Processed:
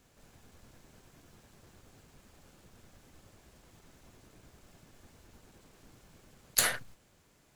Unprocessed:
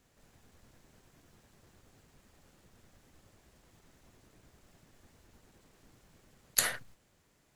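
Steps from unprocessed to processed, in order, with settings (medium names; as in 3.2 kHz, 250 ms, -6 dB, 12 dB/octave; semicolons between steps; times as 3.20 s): band-stop 1.9 kHz, Q 21; in parallel at -4.5 dB: integer overflow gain 22 dB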